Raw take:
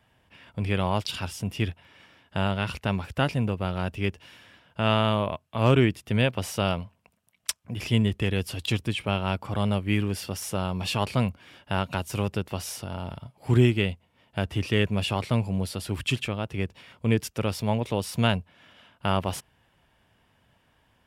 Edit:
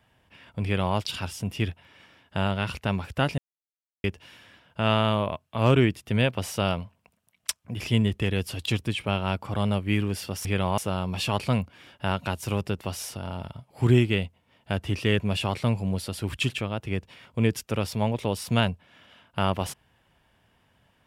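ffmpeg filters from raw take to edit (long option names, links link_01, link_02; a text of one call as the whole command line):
ffmpeg -i in.wav -filter_complex "[0:a]asplit=5[link_01][link_02][link_03][link_04][link_05];[link_01]atrim=end=3.38,asetpts=PTS-STARTPTS,afade=type=out:start_time=3.376:duration=0.004:curve=hsin[link_06];[link_02]atrim=start=3.38:end=4.04,asetpts=PTS-STARTPTS,volume=0[link_07];[link_03]atrim=start=4.04:end=10.452,asetpts=PTS-STARTPTS,afade=type=in:duration=0.004:curve=hsin[link_08];[link_04]atrim=start=0.638:end=0.972[link_09];[link_05]atrim=start=10.448[link_10];[link_06][link_07][link_08]concat=n=3:v=0:a=1[link_11];[link_11][link_09]acrossfade=duration=0.004:curve1=hsin:curve2=hsin[link_12];[link_12][link_10]acrossfade=duration=0.004:curve1=hsin:curve2=hsin" out.wav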